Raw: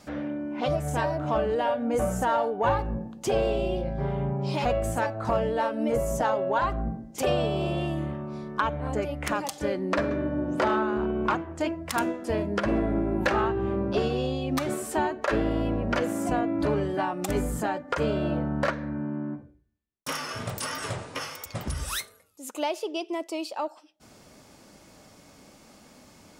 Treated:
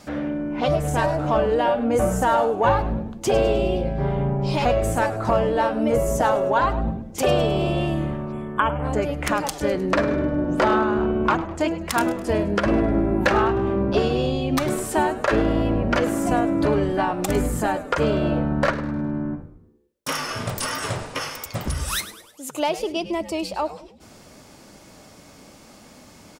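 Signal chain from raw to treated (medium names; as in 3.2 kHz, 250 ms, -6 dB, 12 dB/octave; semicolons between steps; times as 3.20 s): spectral selection erased 8.32–8.84 s, 3.5–7.2 kHz; frequency-shifting echo 103 ms, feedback 49%, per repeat -130 Hz, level -14.5 dB; trim +5.5 dB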